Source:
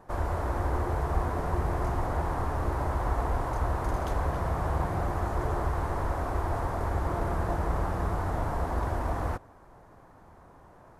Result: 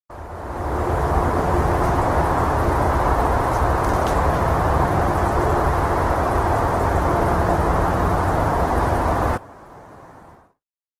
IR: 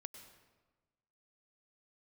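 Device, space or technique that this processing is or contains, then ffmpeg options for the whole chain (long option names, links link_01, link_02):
video call: -af "highpass=frequency=110:poles=1,dynaudnorm=framelen=110:gausssize=13:maxgain=15dB,agate=range=-56dB:threshold=-43dB:ratio=16:detection=peak,volume=-1.5dB" -ar 48000 -c:a libopus -b:a 16k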